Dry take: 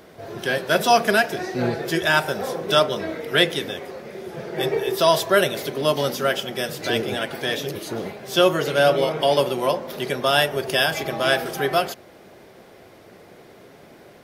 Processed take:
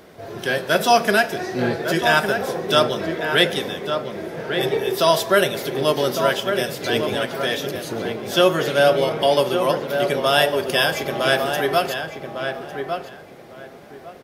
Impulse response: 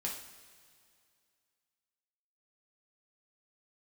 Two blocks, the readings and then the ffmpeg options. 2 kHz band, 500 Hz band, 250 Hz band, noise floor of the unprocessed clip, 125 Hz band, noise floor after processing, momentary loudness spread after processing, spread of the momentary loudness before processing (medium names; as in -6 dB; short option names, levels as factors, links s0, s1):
+1.5 dB, +2.0 dB, +2.0 dB, -48 dBFS, +1.5 dB, -42 dBFS, 11 LU, 12 LU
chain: -filter_complex "[0:a]asplit=2[s0][s1];[s1]adelay=1154,lowpass=f=2000:p=1,volume=0.501,asplit=2[s2][s3];[s3]adelay=1154,lowpass=f=2000:p=1,volume=0.22,asplit=2[s4][s5];[s5]adelay=1154,lowpass=f=2000:p=1,volume=0.22[s6];[s0][s2][s4][s6]amix=inputs=4:normalize=0,asplit=2[s7][s8];[1:a]atrim=start_sample=2205,asetrate=31752,aresample=44100[s9];[s8][s9]afir=irnorm=-1:irlink=0,volume=0.133[s10];[s7][s10]amix=inputs=2:normalize=0"